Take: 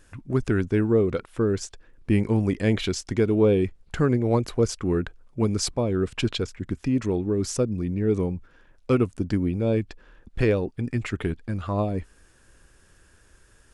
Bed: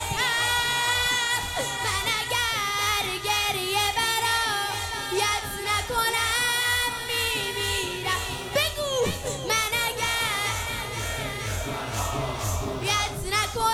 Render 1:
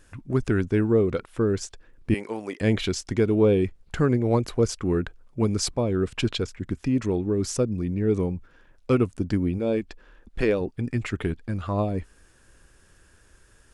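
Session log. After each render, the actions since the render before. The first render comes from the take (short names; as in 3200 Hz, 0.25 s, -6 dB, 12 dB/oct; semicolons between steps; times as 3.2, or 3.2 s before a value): 2.14–2.61 HPF 490 Hz; 9.58–10.61 bell 110 Hz -11.5 dB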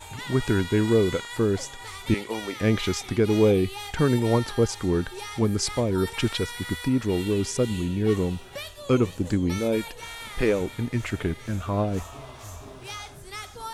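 add bed -13 dB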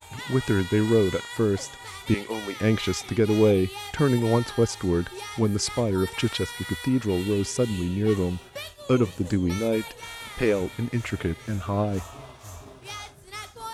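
expander -38 dBFS; HPF 40 Hz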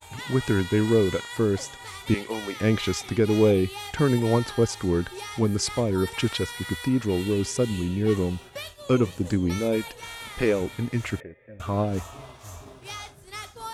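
11.2–11.6 vocal tract filter e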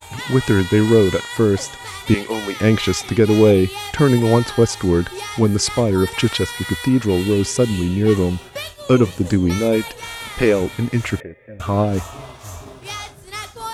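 gain +7.5 dB; limiter -3 dBFS, peak gain reduction 1 dB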